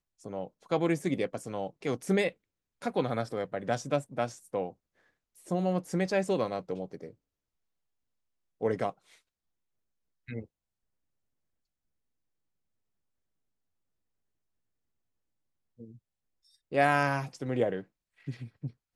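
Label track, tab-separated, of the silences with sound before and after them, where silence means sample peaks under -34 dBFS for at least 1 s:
7.060000	8.620000	silence
8.900000	10.290000	silence
10.400000	16.730000	silence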